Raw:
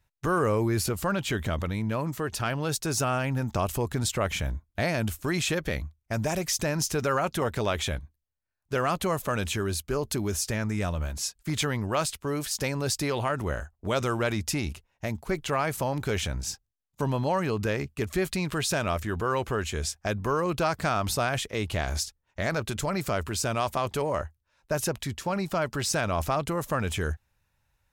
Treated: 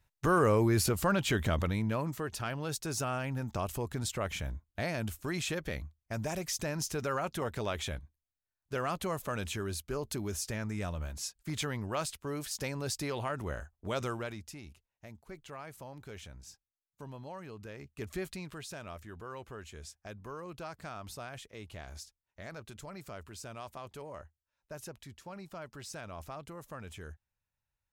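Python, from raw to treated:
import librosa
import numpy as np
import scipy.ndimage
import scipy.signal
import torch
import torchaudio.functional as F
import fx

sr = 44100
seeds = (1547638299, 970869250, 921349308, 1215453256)

y = fx.gain(x, sr, db=fx.line((1.65, -1.0), (2.4, -7.5), (14.07, -7.5), (14.51, -18.5), (17.73, -18.5), (18.09, -9.0), (18.67, -17.0)))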